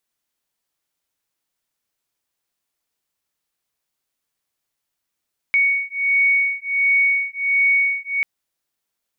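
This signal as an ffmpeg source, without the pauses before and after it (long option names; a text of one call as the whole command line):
ffmpeg -f lavfi -i "aevalsrc='0.119*(sin(2*PI*2230*t)+sin(2*PI*2231.4*t))':duration=2.69:sample_rate=44100" out.wav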